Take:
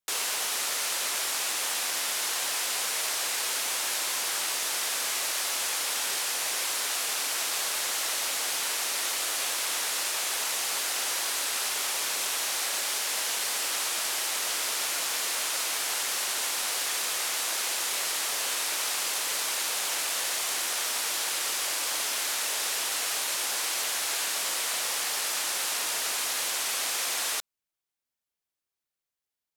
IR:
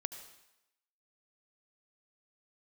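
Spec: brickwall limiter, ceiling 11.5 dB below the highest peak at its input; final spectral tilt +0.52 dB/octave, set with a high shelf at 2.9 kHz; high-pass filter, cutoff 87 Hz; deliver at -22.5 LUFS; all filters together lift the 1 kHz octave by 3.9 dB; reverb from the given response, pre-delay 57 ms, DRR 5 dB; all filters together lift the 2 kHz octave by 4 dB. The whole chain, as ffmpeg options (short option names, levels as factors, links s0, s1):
-filter_complex "[0:a]highpass=87,equalizer=f=1000:t=o:g=4,equalizer=f=2000:t=o:g=7,highshelf=f=2900:g=-8,alimiter=level_in=1.58:limit=0.0631:level=0:latency=1,volume=0.631,asplit=2[s0][s1];[1:a]atrim=start_sample=2205,adelay=57[s2];[s1][s2]afir=irnorm=-1:irlink=0,volume=0.631[s3];[s0][s3]amix=inputs=2:normalize=0,volume=3.76"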